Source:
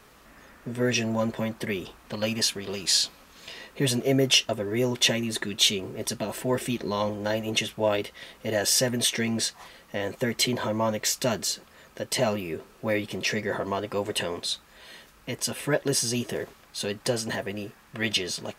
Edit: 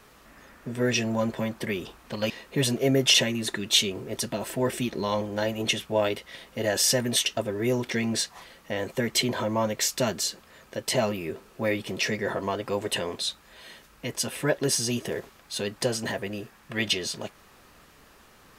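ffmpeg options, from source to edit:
-filter_complex "[0:a]asplit=5[a][b][c][d][e];[a]atrim=end=2.302[f];[b]atrim=start=3.538:end=4.382[g];[c]atrim=start=5.018:end=9.142[h];[d]atrim=start=4.378:end=5.022[i];[e]atrim=start=9.138[j];[f][g]acrossfade=d=0.004:c1=hsin:c2=hsin[k];[k][h]acrossfade=d=0.004:c1=hsin:c2=hsin[l];[l][i]acrossfade=d=0.004:c1=hsin:c2=hsin[m];[m][j]acrossfade=d=0.004:c1=hsin:c2=hsin"

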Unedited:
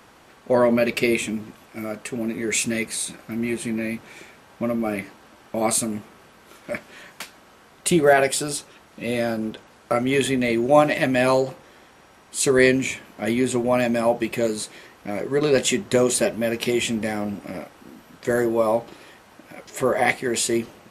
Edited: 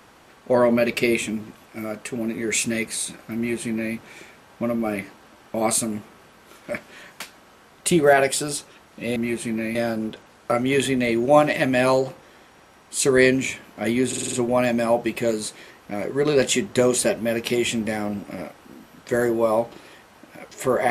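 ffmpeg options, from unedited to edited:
-filter_complex "[0:a]asplit=8[a][b][c][d][e][f][g][h];[a]atrim=end=9.162[i];[b]atrim=start=3.358:end=3.952[j];[c]atrim=start=9.158:end=13.542[k];[d]atrim=start=13.488:end=13.542[l];[e]atrim=start=13.488:end=13.542[m];[f]atrim=start=13.488:end=13.542[n];[g]atrim=start=13.488:end=13.542[o];[h]atrim=start=13.488[p];[i][j]acrossfade=d=0.004:c1=hsin:c2=hsin[q];[q][k]acrossfade=d=0.004:c1=hsin:c2=hsin[r];[r][l]acrossfade=d=0.004:c1=hsin:c2=hsin[s];[s][m]acrossfade=d=0.004:c1=hsin:c2=hsin[t];[t][n]acrossfade=d=0.004:c1=hsin:c2=hsin[u];[u][o]acrossfade=d=0.004:c1=hsin:c2=hsin[v];[v][p]acrossfade=d=0.004:c1=hsin:c2=hsin"

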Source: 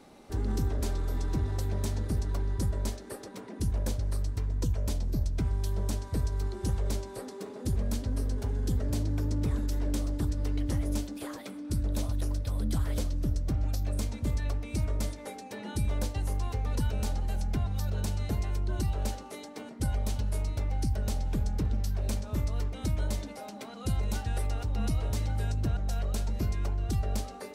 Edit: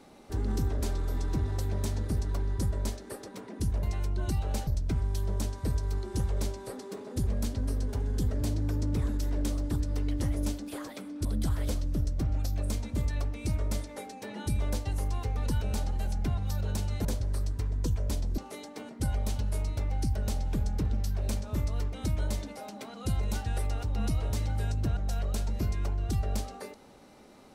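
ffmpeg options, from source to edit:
-filter_complex "[0:a]asplit=6[a][b][c][d][e][f];[a]atrim=end=3.832[g];[b]atrim=start=18.338:end=19.182[h];[c]atrim=start=5.158:end=11.742[i];[d]atrim=start=12.538:end=18.342[j];[e]atrim=start=3.828:end=5.162[k];[f]atrim=start=19.178[l];[g][h]acrossfade=d=0.004:c1=hsin:c2=hsin[m];[m][i]acrossfade=d=0.004:c1=hsin:c2=hsin[n];[n][j]acrossfade=d=0.004:c1=hsin:c2=hsin[o];[o][k]acrossfade=d=0.004:c1=hsin:c2=hsin[p];[p][l]acrossfade=d=0.004:c1=hsin:c2=hsin"

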